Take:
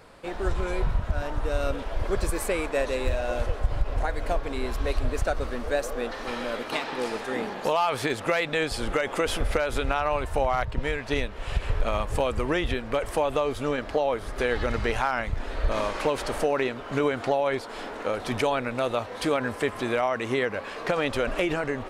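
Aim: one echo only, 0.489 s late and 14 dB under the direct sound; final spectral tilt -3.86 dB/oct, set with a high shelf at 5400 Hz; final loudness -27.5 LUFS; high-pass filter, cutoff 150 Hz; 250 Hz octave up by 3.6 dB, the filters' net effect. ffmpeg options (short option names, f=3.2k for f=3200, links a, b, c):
-af "highpass=150,equalizer=f=250:t=o:g=5,highshelf=f=5.4k:g=8,aecho=1:1:489:0.2,volume=-0.5dB"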